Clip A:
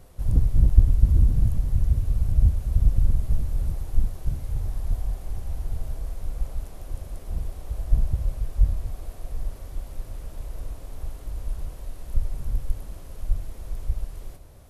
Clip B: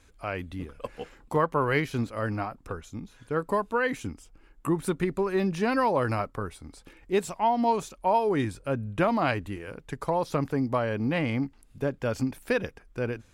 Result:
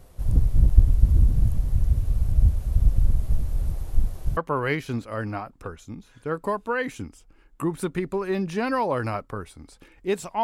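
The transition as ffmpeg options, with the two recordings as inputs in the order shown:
ffmpeg -i cue0.wav -i cue1.wav -filter_complex "[0:a]apad=whole_dur=10.43,atrim=end=10.43,atrim=end=4.372[link_01];[1:a]atrim=start=1.418:end=7.48[link_02];[link_01][link_02]acrossfade=duration=0.004:curve1=hsin:curve2=hsin" out.wav

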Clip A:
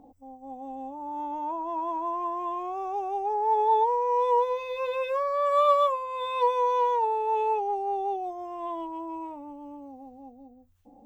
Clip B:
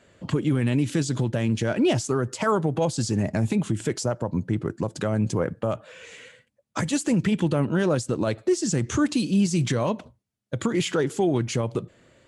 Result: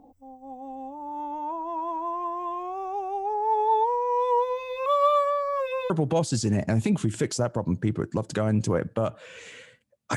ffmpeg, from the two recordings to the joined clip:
ffmpeg -i cue0.wav -i cue1.wav -filter_complex "[0:a]apad=whole_dur=10.16,atrim=end=10.16,asplit=2[link_01][link_02];[link_01]atrim=end=4.862[link_03];[link_02]atrim=start=4.858:end=5.902,asetpts=PTS-STARTPTS,areverse[link_04];[1:a]atrim=start=2.558:end=6.82[link_05];[link_03][link_04]acrossfade=duration=0.004:curve1=hsin:curve2=hsin[link_06];[link_06][link_05]acrossfade=duration=0.004:curve1=hsin:curve2=hsin" out.wav

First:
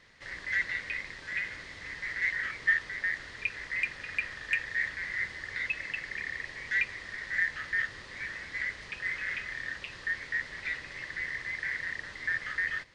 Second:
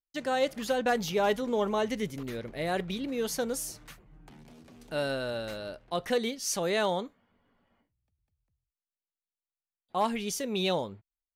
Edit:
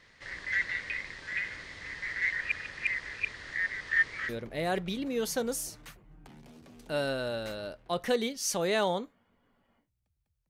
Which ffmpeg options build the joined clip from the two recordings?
ffmpeg -i cue0.wav -i cue1.wav -filter_complex "[0:a]apad=whole_dur=10.49,atrim=end=10.49,asplit=2[link_01][link_02];[link_01]atrim=end=2.412[link_03];[link_02]atrim=start=2.408:end=4.292,asetpts=PTS-STARTPTS,areverse[link_04];[1:a]atrim=start=2.308:end=8.51[link_05];[link_03][link_04]acrossfade=duration=0.004:curve1=hsin:curve2=hsin[link_06];[link_06][link_05]acrossfade=duration=0.004:curve1=hsin:curve2=hsin" out.wav

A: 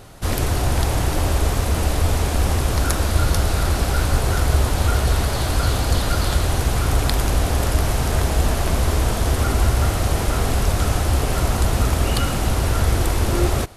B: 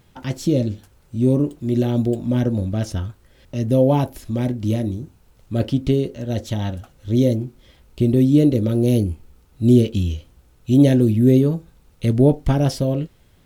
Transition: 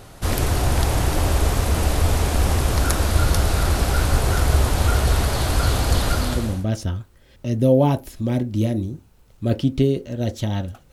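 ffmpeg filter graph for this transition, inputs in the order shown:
ffmpeg -i cue0.wav -i cue1.wav -filter_complex "[0:a]apad=whole_dur=10.92,atrim=end=10.92,atrim=end=6.67,asetpts=PTS-STARTPTS[link_01];[1:a]atrim=start=2.18:end=7.01,asetpts=PTS-STARTPTS[link_02];[link_01][link_02]acrossfade=duration=0.58:curve1=tri:curve2=tri" out.wav

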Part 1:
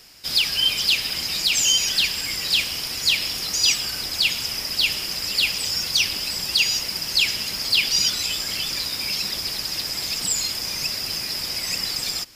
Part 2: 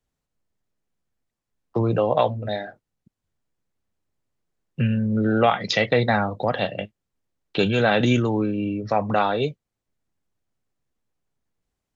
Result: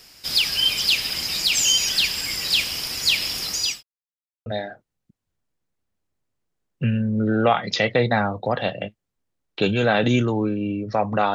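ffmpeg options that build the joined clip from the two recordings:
ffmpeg -i cue0.wav -i cue1.wav -filter_complex "[0:a]apad=whole_dur=11.34,atrim=end=11.34,asplit=2[link_01][link_02];[link_01]atrim=end=3.83,asetpts=PTS-STARTPTS,afade=type=out:start_time=3.36:duration=0.47:curve=qsin[link_03];[link_02]atrim=start=3.83:end=4.46,asetpts=PTS-STARTPTS,volume=0[link_04];[1:a]atrim=start=2.43:end=9.31,asetpts=PTS-STARTPTS,afade=type=in:duration=0.004:curve=hsin[link_05];[link_03][link_04][link_05]concat=n=3:v=0:a=1" out.wav

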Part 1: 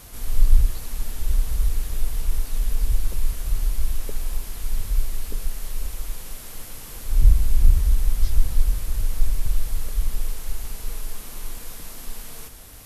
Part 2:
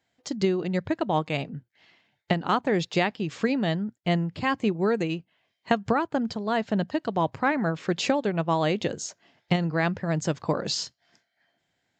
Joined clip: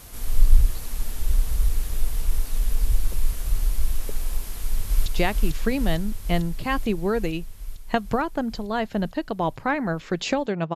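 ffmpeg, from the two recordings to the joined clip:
ffmpeg -i cue0.wav -i cue1.wav -filter_complex "[0:a]apad=whole_dur=10.75,atrim=end=10.75,atrim=end=5.062[link_01];[1:a]atrim=start=2.828:end=8.52[link_02];[link_01][link_02]acrossfade=duration=0.004:curve1=hsin:curve2=hsin,asplit=2[link_03][link_04];[link_04]afade=type=in:start_time=4.44:duration=0.01,afade=type=out:start_time=5.06:duration=0.01,aecho=0:1:450|900|1350|1800|2250|2700|3150|3600|4050|4500|4950|5400:0.841395|0.631046|0.473285|0.354964|0.266223|0.199667|0.14975|0.112313|0.0842345|0.0631759|0.0473819|0.0355364[link_05];[link_03][link_05]amix=inputs=2:normalize=0" out.wav

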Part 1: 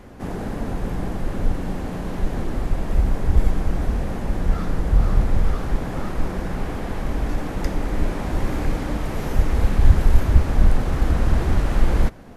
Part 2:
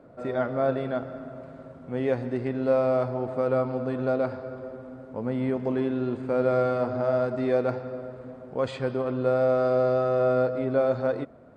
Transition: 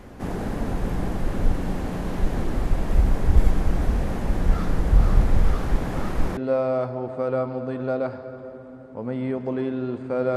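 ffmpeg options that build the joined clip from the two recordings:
ffmpeg -i cue0.wav -i cue1.wav -filter_complex "[0:a]apad=whole_dur=10.36,atrim=end=10.36,atrim=end=6.372[link_01];[1:a]atrim=start=2.558:end=6.55[link_02];[link_01][link_02]acrossfade=duration=0.004:curve1=hsin:curve2=hsin" out.wav

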